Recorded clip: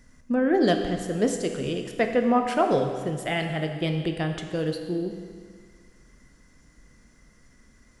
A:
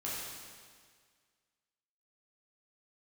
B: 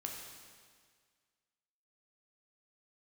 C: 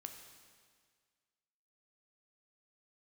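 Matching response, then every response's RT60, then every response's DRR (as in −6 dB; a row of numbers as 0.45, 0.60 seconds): C; 1.8, 1.8, 1.8 seconds; −8.0, −0.5, 4.5 decibels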